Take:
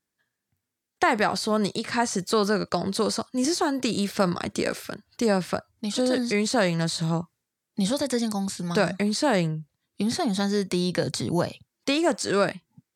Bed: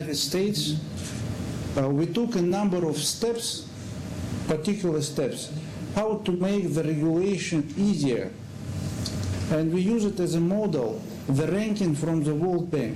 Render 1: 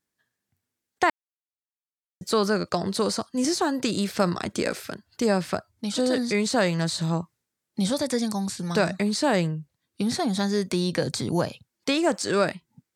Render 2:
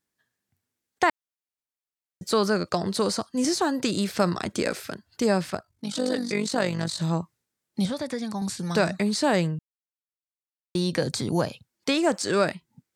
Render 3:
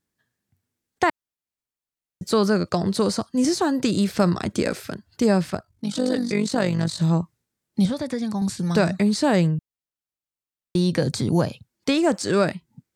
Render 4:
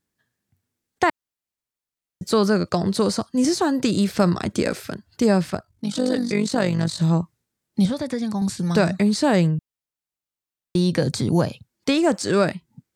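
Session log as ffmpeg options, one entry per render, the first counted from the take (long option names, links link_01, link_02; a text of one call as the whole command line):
ffmpeg -i in.wav -filter_complex "[0:a]asplit=3[link_01][link_02][link_03];[link_01]atrim=end=1.1,asetpts=PTS-STARTPTS,afade=type=out:start_time=1.096:duration=0.004:curve=hsin[link_04];[link_02]atrim=start=1.1:end=2.21,asetpts=PTS-STARTPTS,volume=0[link_05];[link_03]atrim=start=2.21,asetpts=PTS-STARTPTS,afade=type=in:duration=0.004:curve=hsin[link_06];[link_04][link_05][link_06]concat=n=3:v=0:a=1" out.wav
ffmpeg -i in.wav -filter_complex "[0:a]asettb=1/sr,asplit=3[link_01][link_02][link_03];[link_01]atrim=end=5.504[link_04];[link_02]atrim=start=5.5:end=7,asetpts=PTS-STARTPTS,afade=type=in:duration=0.004:curve=qsin,afade=type=out:start_time=1.496:duration=0.004:curve=qsin,tremolo=f=48:d=0.667[link_05];[link_03]atrim=start=6.996[link_06];[link_04][link_05]acrossfade=duration=0.004:curve1=hsin:curve2=qsin[link_07];[link_07][link_06]acrossfade=duration=0.004:curve1=qsin:curve2=hsin,asettb=1/sr,asplit=3[link_08][link_09][link_10];[link_08]atrim=end=7.854[link_11];[link_09]atrim=start=7.85:end=8.42,asetpts=PTS-STARTPTS,afade=type=in:duration=0.004:curve=qsin,afade=type=out:start_time=0.566:duration=0.004:curve=qsin,acrossover=split=1100|3500[link_12][link_13][link_14];[link_12]acompressor=threshold=-28dB:ratio=4[link_15];[link_13]acompressor=threshold=-39dB:ratio=4[link_16];[link_14]acompressor=threshold=-48dB:ratio=4[link_17];[link_15][link_16][link_17]amix=inputs=3:normalize=0[link_18];[link_10]atrim=start=8.416[link_19];[link_11][link_18]acrossfade=duration=0.004:curve1=hsin:curve2=qsin[link_20];[link_20][link_19]acrossfade=duration=0.004:curve1=qsin:curve2=hsin,asplit=3[link_21][link_22][link_23];[link_21]atrim=end=9.59,asetpts=PTS-STARTPTS,afade=type=out:start_time=9.586:duration=0.004:curve=hsin[link_24];[link_22]atrim=start=9.59:end=10.75,asetpts=PTS-STARTPTS,volume=0[link_25];[link_23]atrim=start=10.75,asetpts=PTS-STARTPTS,afade=type=in:duration=0.004:curve=hsin[link_26];[link_24][link_25][link_26]concat=n=3:v=0:a=1" out.wav
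ffmpeg -i in.wav -af "lowshelf=frequency=300:gain=8.5" out.wav
ffmpeg -i in.wav -af "volume=1dB" out.wav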